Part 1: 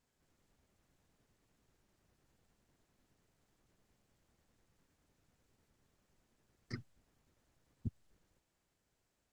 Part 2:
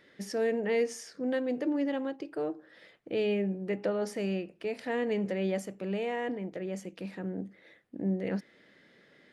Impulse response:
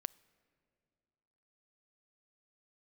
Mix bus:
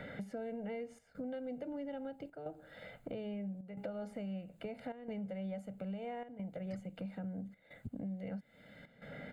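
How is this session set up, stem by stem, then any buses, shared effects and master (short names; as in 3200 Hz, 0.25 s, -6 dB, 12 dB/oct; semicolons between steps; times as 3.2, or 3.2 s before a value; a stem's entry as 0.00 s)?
-0.5 dB, 0.00 s, no send, high shelf 8100 Hz +8 dB
-6.0 dB, 0.00 s, no send, tilt -2.5 dB/oct; comb 1.4 ms, depth 87%; three-band squash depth 70%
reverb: off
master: bell 5600 Hz -14 dB 0.27 oct; step gate "xxxxxxxxxxxx..xx" 183 bpm -12 dB; compressor 3:1, threshold -42 dBFS, peak gain reduction 11 dB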